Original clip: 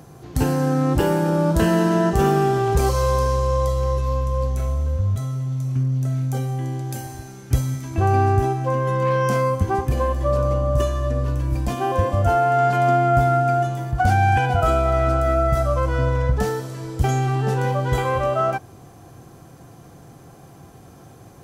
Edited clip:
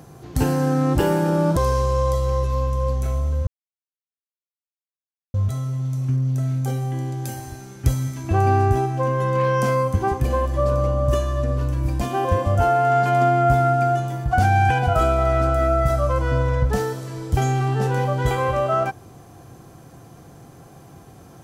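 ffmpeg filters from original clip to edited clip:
-filter_complex "[0:a]asplit=3[a][b][c];[a]atrim=end=1.572[d];[b]atrim=start=3.108:end=5.01,asetpts=PTS-STARTPTS,afade=t=out:st=1.898:d=0.004:c=hsin,apad=pad_dur=1.87[e];[c]atrim=start=5.01,asetpts=PTS-STARTPTS,afade=t=in:d=0.004:c=hsin[f];[e][f]concat=n=2:v=0:a=1[g];[d][g]acrossfade=d=0.004:c1=hsin:c2=hsin"

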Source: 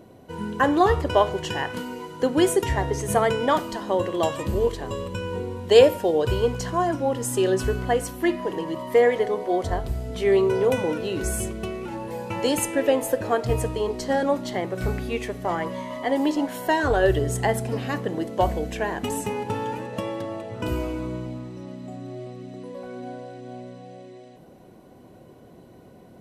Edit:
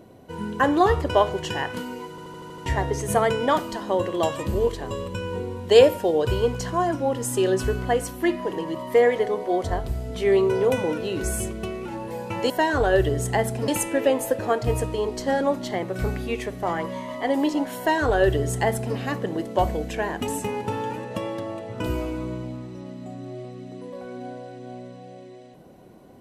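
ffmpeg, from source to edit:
-filter_complex "[0:a]asplit=10[a][b][c][d][e][f][g][h][i][j];[a]atrim=end=2.182[k];[b]atrim=start=2.098:end=2.182[l];[c]atrim=start=2.098:end=2.182[m];[d]atrim=start=2.098:end=2.182[n];[e]atrim=start=2.098:end=2.182[o];[f]atrim=start=2.098:end=2.182[p];[g]atrim=start=2.098:end=2.182[q];[h]atrim=start=2.658:end=12.502[r];[i]atrim=start=16.598:end=17.782[s];[j]atrim=start=12.498[t];[k][l]acrossfade=d=0.004:c1=hsin:c2=hsin[u];[u][m]acrossfade=d=0.004:c1=hsin:c2=hsin[v];[v][n]acrossfade=d=0.004:c1=hsin:c2=hsin[w];[w][o]acrossfade=d=0.004:c1=hsin:c2=hsin[x];[x][p]acrossfade=d=0.004:c1=hsin:c2=hsin[y];[y][q]acrossfade=d=0.004:c1=hsin:c2=hsin[z];[z][r]acrossfade=d=0.004:c1=hsin:c2=hsin[aa];[aa][s]acrossfade=d=0.004:c1=hsin:c2=hsin[ab];[ab][t]acrossfade=d=0.004:c1=hsin:c2=hsin"

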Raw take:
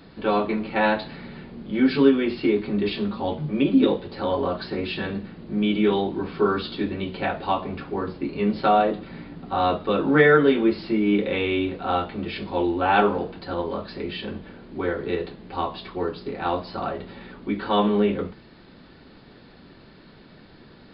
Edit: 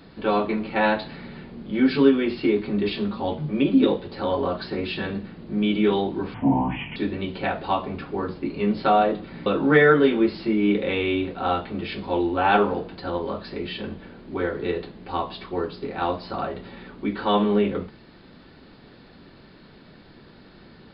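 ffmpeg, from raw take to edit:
-filter_complex "[0:a]asplit=4[a][b][c][d];[a]atrim=end=6.344[e];[b]atrim=start=6.34:end=6.75,asetpts=PTS-STARTPTS,asetrate=29106,aresample=44100,atrim=end_sample=27395,asetpts=PTS-STARTPTS[f];[c]atrim=start=6.746:end=9.252[g];[d]atrim=start=9.898[h];[e][f]acrossfade=d=0.004:c1=hsin:c2=hsin[i];[i][g]acrossfade=d=0.004:c1=hsin:c2=hsin[j];[j][h]acrossfade=d=0.004:c1=hsin:c2=hsin"

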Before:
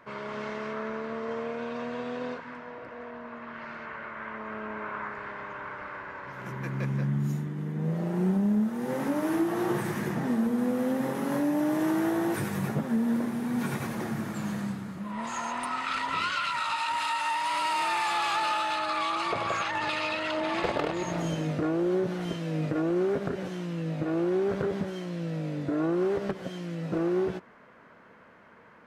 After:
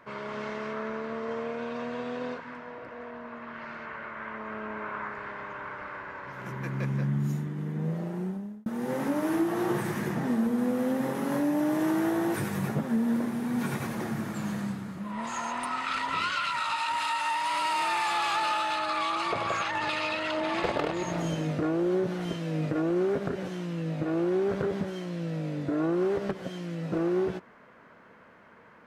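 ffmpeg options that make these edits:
-filter_complex "[0:a]asplit=2[a][b];[a]atrim=end=8.66,asetpts=PTS-STARTPTS,afade=t=out:st=7.76:d=0.9[c];[b]atrim=start=8.66,asetpts=PTS-STARTPTS,afade=t=in:d=0.004:c=hsin[d];[c][d]concat=n=2:v=0:a=1"

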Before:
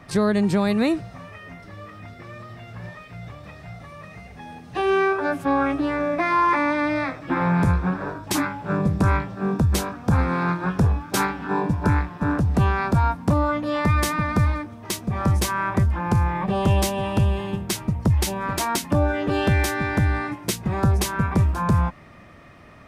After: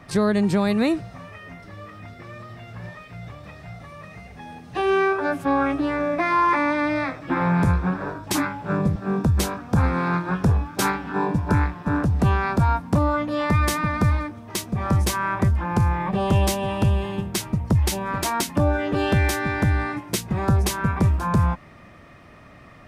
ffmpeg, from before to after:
-filter_complex "[0:a]asplit=2[a][b];[a]atrim=end=8.962[c];[b]atrim=start=9.308[d];[c][d]acrossfade=d=0.004:c1=hsin:c2=hsin"

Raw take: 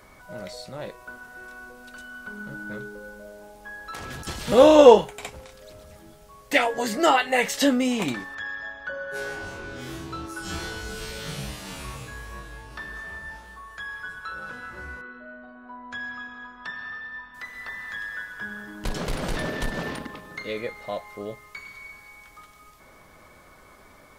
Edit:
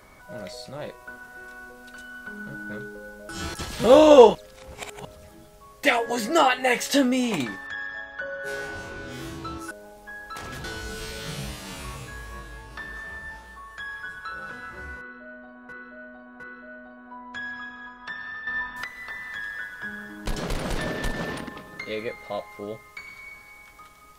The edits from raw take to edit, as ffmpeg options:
-filter_complex "[0:a]asplit=11[a][b][c][d][e][f][g][h][i][j][k];[a]atrim=end=3.292[l];[b]atrim=start=10.388:end=10.642[m];[c]atrim=start=4.218:end=5.032[n];[d]atrim=start=5.028:end=5.732,asetpts=PTS-STARTPTS,areverse[o];[e]atrim=start=5.728:end=10.392[p];[f]atrim=start=3.288:end=4.222[q];[g]atrim=start=10.638:end=15.692[r];[h]atrim=start=14.978:end=15.692[s];[i]atrim=start=14.978:end=17.052[t];[j]atrim=start=17.048:end=17.422,asetpts=PTS-STARTPTS,volume=9dB[u];[k]atrim=start=17.418[v];[l][m]acrossfade=d=0.004:c1=hsin:c2=hsin[w];[w][n]acrossfade=d=0.004:c1=hsin:c2=hsin[x];[x][o]acrossfade=d=0.004:c1=hsin:c2=hsin[y];[y][p]acrossfade=d=0.004:c1=hsin:c2=hsin[z];[z][q]acrossfade=d=0.004:c1=hsin:c2=hsin[aa];[aa][r]acrossfade=d=0.004:c1=hsin:c2=hsin[ab];[ab][s]acrossfade=d=0.004:c1=hsin:c2=hsin[ac];[ac][t]acrossfade=d=0.004:c1=hsin:c2=hsin[ad];[ad][u]acrossfade=d=0.004:c1=hsin:c2=hsin[ae];[ae][v]acrossfade=d=0.004:c1=hsin:c2=hsin"

